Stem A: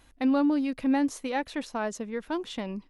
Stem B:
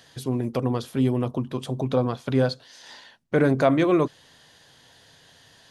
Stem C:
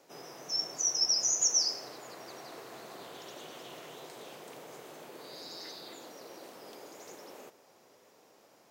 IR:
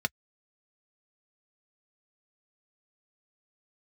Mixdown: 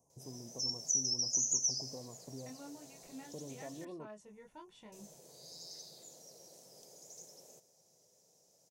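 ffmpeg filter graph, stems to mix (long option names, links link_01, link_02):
-filter_complex "[0:a]flanger=delay=22.5:depth=2.1:speed=1.2,adelay=2250,volume=-15dB,asplit=2[link_01][link_02];[link_02]volume=-10.5dB[link_03];[1:a]volume=-16.5dB[link_04];[2:a]acompressor=threshold=-33dB:ratio=4,firequalizer=gain_entry='entry(170,0);entry(300,-16);entry(470,-7);entry(1200,-24);entry(5900,8);entry(14000,-2)':delay=0.05:min_phase=1,adelay=100,volume=-3dB,asplit=3[link_05][link_06][link_07];[link_05]atrim=end=3.85,asetpts=PTS-STARTPTS,afade=type=out:start_time=3.846:duration=0.004:curve=hsin[link_08];[link_06]atrim=start=3.85:end=4.92,asetpts=PTS-STARTPTS,volume=0[link_09];[link_07]atrim=start=4.92,asetpts=PTS-STARTPTS,afade=type=in:duration=0.004:curve=hsin[link_10];[link_08][link_09][link_10]concat=n=3:v=0:a=1,asplit=2[link_11][link_12];[link_12]volume=-15.5dB[link_13];[link_01][link_04]amix=inputs=2:normalize=0,asuperstop=centerf=2500:order=20:qfactor=0.55,acompressor=threshold=-48dB:ratio=3,volume=0dB[link_14];[3:a]atrim=start_sample=2205[link_15];[link_03][link_13]amix=inputs=2:normalize=0[link_16];[link_16][link_15]afir=irnorm=-1:irlink=0[link_17];[link_11][link_14][link_17]amix=inputs=3:normalize=0"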